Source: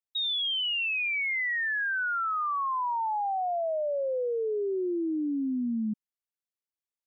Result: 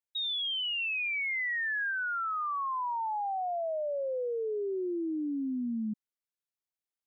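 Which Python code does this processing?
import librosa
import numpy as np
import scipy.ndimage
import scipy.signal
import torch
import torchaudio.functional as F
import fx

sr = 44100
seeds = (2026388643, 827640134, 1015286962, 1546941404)

y = fx.low_shelf(x, sr, hz=490.0, db=11.0, at=(0.78, 1.91))
y = y * librosa.db_to_amplitude(-3.5)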